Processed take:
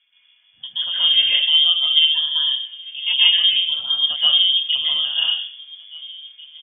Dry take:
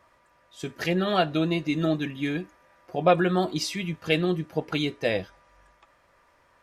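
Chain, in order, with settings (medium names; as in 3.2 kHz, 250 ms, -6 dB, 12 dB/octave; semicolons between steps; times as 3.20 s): high-pass 43 Hz; tilt EQ -4.5 dB/octave; echo from a far wall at 290 m, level -20 dB; plate-style reverb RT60 0.59 s, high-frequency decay 0.6×, pre-delay 115 ms, DRR -8.5 dB; frequency inversion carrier 3.4 kHz; trim -10 dB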